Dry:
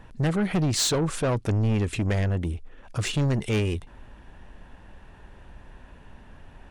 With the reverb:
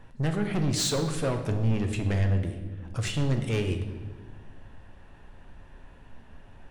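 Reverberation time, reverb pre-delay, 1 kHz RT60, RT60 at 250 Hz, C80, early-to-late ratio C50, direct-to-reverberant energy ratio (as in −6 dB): 1.4 s, 7 ms, 1.1 s, 1.9 s, 10.0 dB, 8.5 dB, 4.5 dB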